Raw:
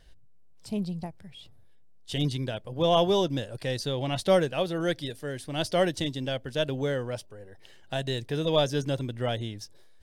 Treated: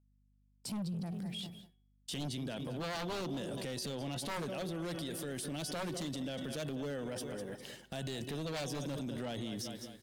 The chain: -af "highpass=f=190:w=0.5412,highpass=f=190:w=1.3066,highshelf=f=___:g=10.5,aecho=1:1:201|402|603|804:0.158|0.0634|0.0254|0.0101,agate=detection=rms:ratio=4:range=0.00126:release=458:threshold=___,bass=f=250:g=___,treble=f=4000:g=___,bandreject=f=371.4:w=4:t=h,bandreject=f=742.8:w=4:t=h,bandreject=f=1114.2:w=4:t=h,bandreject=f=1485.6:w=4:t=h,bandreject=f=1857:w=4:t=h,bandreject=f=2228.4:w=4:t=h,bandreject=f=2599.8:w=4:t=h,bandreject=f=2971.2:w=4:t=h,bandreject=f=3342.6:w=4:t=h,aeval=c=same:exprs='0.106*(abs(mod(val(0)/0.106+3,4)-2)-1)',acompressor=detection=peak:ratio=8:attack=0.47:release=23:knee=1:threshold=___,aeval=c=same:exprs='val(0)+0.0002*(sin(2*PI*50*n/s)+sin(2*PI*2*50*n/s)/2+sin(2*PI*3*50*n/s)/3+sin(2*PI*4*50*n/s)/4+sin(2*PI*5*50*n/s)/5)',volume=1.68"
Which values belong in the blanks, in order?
6700, 0.00398, 14, -1, 0.00891